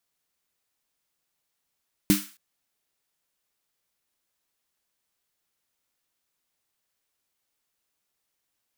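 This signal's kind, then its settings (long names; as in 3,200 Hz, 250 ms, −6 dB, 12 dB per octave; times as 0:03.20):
synth snare length 0.27 s, tones 200 Hz, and 300 Hz, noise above 1,200 Hz, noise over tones −7 dB, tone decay 0.22 s, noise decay 0.41 s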